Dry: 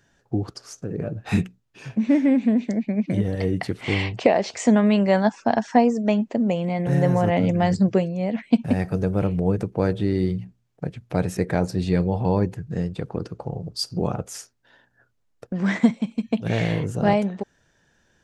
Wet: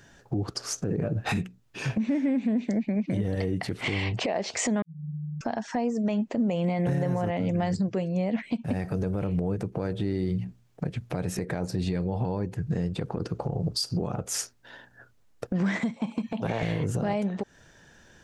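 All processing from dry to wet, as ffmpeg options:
ffmpeg -i in.wav -filter_complex "[0:a]asettb=1/sr,asplit=3[link_01][link_02][link_03];[link_01]atrim=end=4.824[link_04];[link_02]atrim=start=4.82:end=5.41,asetpts=PTS-STARTPTS,afade=type=in:duration=0.004:curve=qsin,afade=type=out:start_time=0.586:duration=0.004:curve=qsin,aeval=exprs='val(0)+0.0316*(sin(2*PI*50*n/s)+sin(2*PI*2*50*n/s)/2+sin(2*PI*3*50*n/s)/3+sin(2*PI*4*50*n/s)/4+sin(2*PI*5*50*n/s)/5)':channel_layout=same,asuperpass=centerf=160:order=20:qfactor=6.4[link_05];[link_03]atrim=start=5.406[link_06];[link_04][link_05]acrossfade=duration=0.004:curve1=hsin:curve2=qsin[link_07];[link_07][link_06]acrossfade=duration=0.004:curve1=qsin:curve2=hsin,asettb=1/sr,asplit=3[link_08][link_09][link_10];[link_08]atrim=end=15.964[link_11];[link_09]atrim=start=15.96:end=16.63,asetpts=PTS-STARTPTS,afade=type=in:duration=0.004:curve=qsin,afade=type=out:start_time=0.666:duration=0.004:curve=qsin,highpass=frequency=100:width=0.5412,highpass=frequency=100:width=1.3066,equalizer=frequency=910:width_type=o:width=1.2:gain=13.5,acompressor=threshold=-23dB:ratio=2.5:attack=3.2:release=140:knee=1:detection=peak[link_12];[link_10]atrim=start=16.626[link_13];[link_11][link_12]acrossfade=duration=0.004:curve1=hsin:curve2=qsin[link_14];[link_14][link_13]acrossfade=duration=0.004:curve1=qsin:curve2=hsin,acompressor=threshold=-30dB:ratio=12,alimiter=level_in=3dB:limit=-24dB:level=0:latency=1:release=32,volume=-3dB,volume=8.5dB" out.wav

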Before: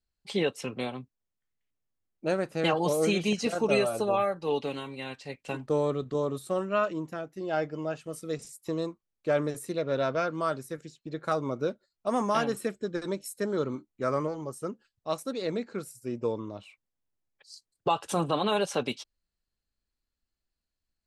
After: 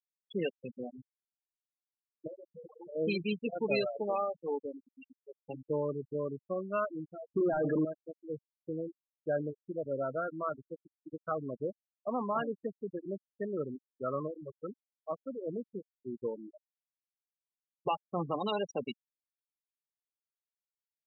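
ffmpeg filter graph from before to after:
ffmpeg -i in.wav -filter_complex "[0:a]asettb=1/sr,asplit=3[link_01][link_02][link_03];[link_01]atrim=end=2.274[link_04];[link_02]atrim=start=2.27:end=2.96,asetpts=PTS-STARTPTS,afade=type=in:duration=0.004:curve=qsin,afade=type=out:start_time=0.686:duration=0.004:curve=qsin,acompressor=threshold=-36dB:ratio=4:attack=3.2:release=140:knee=1:detection=peak,acrusher=bits=5:mode=log:mix=0:aa=0.000001,asplit=2[link_05][link_06];[link_06]adelay=20,volume=-9dB[link_07];[link_05][link_07]amix=inputs=2:normalize=0,atrim=end_sample=30429[link_08];[link_03]atrim=start=2.956[link_09];[link_04][link_08]acrossfade=duration=0.004:curve1=hsin:curve2=qsin[link_10];[link_10][link_09]acrossfade=duration=0.004:curve1=qsin:curve2=hsin,asettb=1/sr,asplit=3[link_11][link_12][link_13];[link_11]atrim=end=7.304[link_14];[link_12]atrim=start=7.3:end=7.85,asetpts=PTS-STARTPTS,afade=type=in:duration=0.004:curve=qsin,afade=type=out:start_time=0.546:duration=0.004:curve=qsin,asplit=2[link_15][link_16];[link_16]highpass=frequency=720:poles=1,volume=31dB,asoftclip=type=tanh:threshold=-16.5dB[link_17];[link_15][link_17]amix=inputs=2:normalize=0,lowpass=frequency=6500:poles=1,volume=-6dB,acompressor=threshold=-27dB:ratio=4:attack=3.2:release=140:knee=1:detection=peak,equalizer=frequency=240:width=0.56:gain=8.5[link_18];[link_13]atrim=start=7.846[link_19];[link_14][link_18]acrossfade=duration=0.004:curve1=hsin:curve2=qsin[link_20];[link_20][link_19]acrossfade=duration=0.004:curve1=qsin:curve2=hsin,afftfilt=real='re*gte(hypot(re,im),0.0891)':imag='im*gte(hypot(re,im),0.0891)':win_size=1024:overlap=0.75,highshelf=frequency=4600:gain=11.5,volume=-6dB" out.wav

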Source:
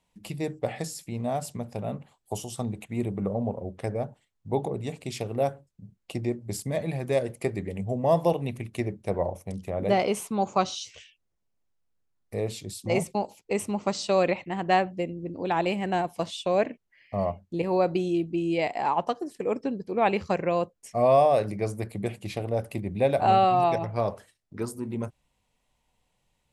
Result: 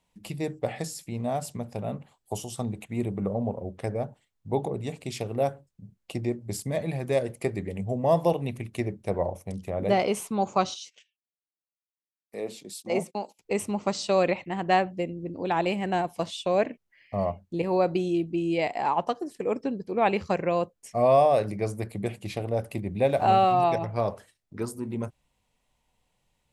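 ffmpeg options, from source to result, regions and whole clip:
ffmpeg -i in.wav -filter_complex "[0:a]asettb=1/sr,asplit=3[link_01][link_02][link_03];[link_01]atrim=end=10.744[link_04];[link_02]atrim=start=10.74:end=13.39,asetpts=PTS-STARTPTS,afade=type=in:duration=0.004:curve=qsin,afade=type=out:start_time=2.646:duration=0.004:curve=qsin,highpass=frequency=190:width=0.5412,highpass=frequency=190:width=1.3066,agate=range=-19dB:threshold=-48dB:ratio=16:release=100:detection=peak,acrossover=split=1200[link_05][link_06];[link_05]aeval=exprs='val(0)*(1-0.5/2+0.5/2*cos(2*PI*2.2*n/s))':channel_layout=same[link_07];[link_06]aeval=exprs='val(0)*(1-0.5/2-0.5/2*cos(2*PI*2.2*n/s))':channel_layout=same[link_08];[link_07][link_08]amix=inputs=2:normalize=0[link_09];[link_03]atrim=start=13.386[link_10];[link_04][link_09]acrossfade=duration=0.004:curve1=hsin:curve2=qsin[link_11];[link_11][link_10]acrossfade=duration=0.004:curve1=qsin:curve2=hsin,asettb=1/sr,asplit=3[link_12][link_13][link_14];[link_12]atrim=end=23.054[link_15];[link_13]atrim=start=23.05:end=23.53,asetpts=PTS-STARTPTS,afade=type=in:duration=0.004:curve=qsin,afade=type=out:start_time=0.476:duration=0.004:curve=qsin,bandreject=frequency=4900:width=7.2,aeval=exprs='sgn(val(0))*max(abs(val(0))-0.00251,0)':channel_layout=same[link_16];[link_14]atrim=start=23.526[link_17];[link_15][link_16]acrossfade=duration=0.004:curve1=hsin:curve2=qsin[link_18];[link_18][link_17]acrossfade=duration=0.004:curve1=qsin:curve2=hsin" out.wav

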